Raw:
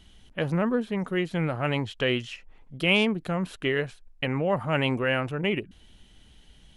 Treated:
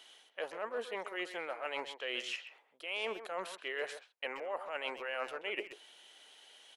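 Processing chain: HPF 480 Hz 24 dB/oct; reverse; compressor 10:1, threshold -38 dBFS, peak gain reduction 20.5 dB; reverse; speakerphone echo 0.13 s, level -10 dB; gain +2.5 dB

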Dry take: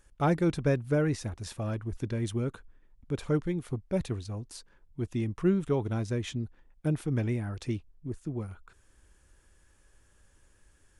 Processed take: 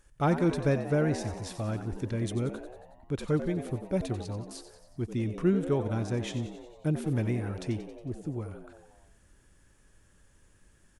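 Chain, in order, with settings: frequency-shifting echo 91 ms, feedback 62%, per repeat +82 Hz, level -11.5 dB

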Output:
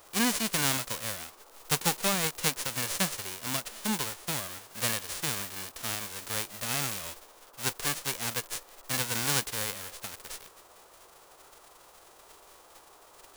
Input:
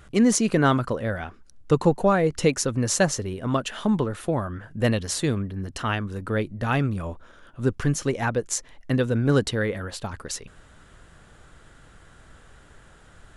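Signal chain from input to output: spectral whitening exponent 0.1; band noise 340–1300 Hz -50 dBFS; gain -8.5 dB

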